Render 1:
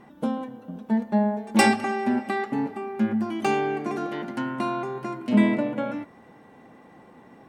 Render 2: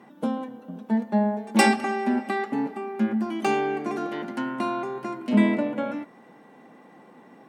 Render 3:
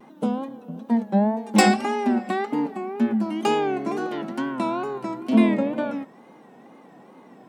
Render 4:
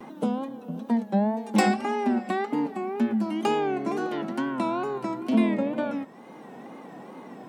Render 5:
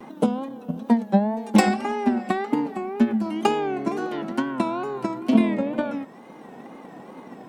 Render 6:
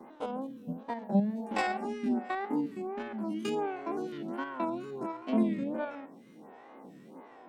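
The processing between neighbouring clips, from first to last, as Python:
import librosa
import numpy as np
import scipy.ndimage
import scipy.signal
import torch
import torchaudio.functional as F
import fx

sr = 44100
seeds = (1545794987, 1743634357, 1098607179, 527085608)

y1 = scipy.signal.sosfilt(scipy.signal.butter(4, 160.0, 'highpass', fs=sr, output='sos'), x)
y2 = fx.peak_eq(y1, sr, hz=1800.0, db=-4.5, octaves=0.84)
y2 = fx.wow_flutter(y2, sr, seeds[0], rate_hz=2.1, depth_cents=110.0)
y2 = y2 * 10.0 ** (2.5 / 20.0)
y3 = fx.band_squash(y2, sr, depth_pct=40)
y3 = y3 * 10.0 ** (-2.5 / 20.0)
y4 = fx.transient(y3, sr, attack_db=8, sustain_db=3)
y5 = fx.spec_steps(y4, sr, hold_ms=50)
y5 = y5 + 10.0 ** (-20.0 / 20.0) * np.pad(y5, (int(136 * sr / 1000.0), 0))[:len(y5)]
y5 = fx.stagger_phaser(y5, sr, hz=1.4)
y5 = y5 * 10.0 ** (-5.0 / 20.0)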